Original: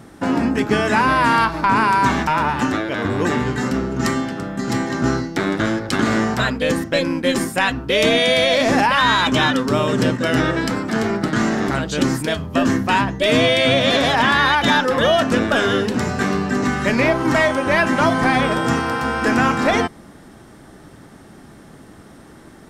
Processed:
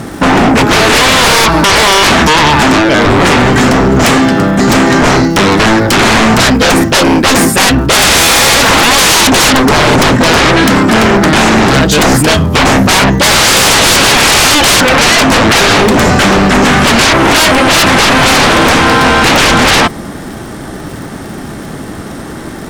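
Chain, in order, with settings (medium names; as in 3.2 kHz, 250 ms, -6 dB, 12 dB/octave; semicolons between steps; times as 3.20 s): crackle 180 per s -42 dBFS; sine folder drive 14 dB, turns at -5.5 dBFS; trim +2 dB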